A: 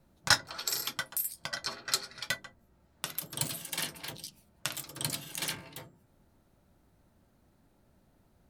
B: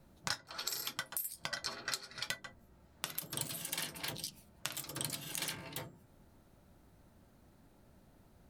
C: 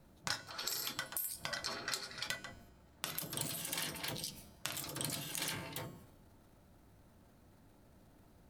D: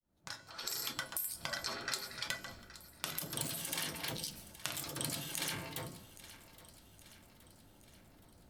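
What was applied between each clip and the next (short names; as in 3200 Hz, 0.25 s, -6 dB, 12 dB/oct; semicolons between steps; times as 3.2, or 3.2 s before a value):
compressor 10:1, threshold -38 dBFS, peak gain reduction 20.5 dB; gain +3 dB
transient shaper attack -1 dB, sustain +6 dB; resonator 99 Hz, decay 1 s, harmonics odd, mix 60%; gain +7 dB
opening faded in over 0.84 s; thinning echo 0.82 s, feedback 55%, level -16.5 dB; gain +1 dB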